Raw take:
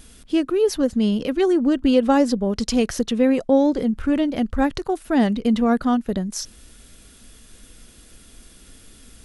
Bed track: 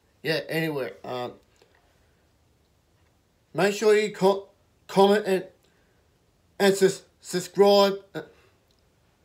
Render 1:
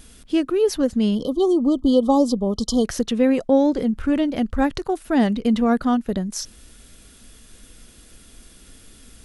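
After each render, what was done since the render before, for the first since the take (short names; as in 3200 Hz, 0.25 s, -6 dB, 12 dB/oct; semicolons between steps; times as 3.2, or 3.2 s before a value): 1.15–2.85 brick-wall FIR band-stop 1300–3000 Hz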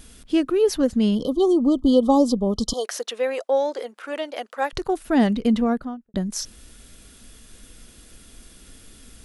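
2.73–4.73 HPF 490 Hz 24 dB/oct; 5.44–6.14 studio fade out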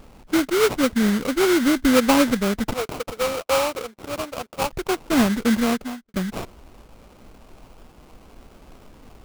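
sample-rate reducer 1800 Hz, jitter 20%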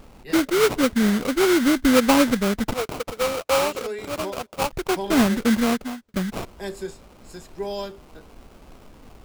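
add bed track -12.5 dB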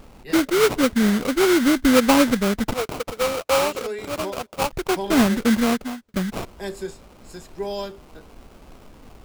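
gain +1 dB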